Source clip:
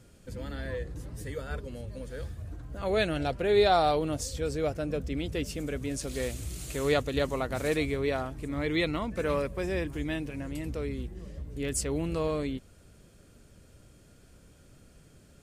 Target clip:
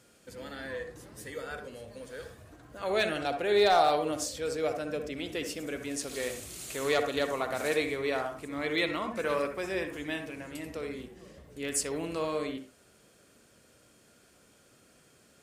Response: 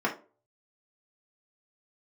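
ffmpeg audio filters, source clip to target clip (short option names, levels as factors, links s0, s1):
-filter_complex "[0:a]highpass=f=560:p=1,volume=8.91,asoftclip=hard,volume=0.112,asplit=2[s0][s1];[1:a]atrim=start_sample=2205,adelay=61[s2];[s1][s2]afir=irnorm=-1:irlink=0,volume=0.141[s3];[s0][s3]amix=inputs=2:normalize=0,volume=1.19"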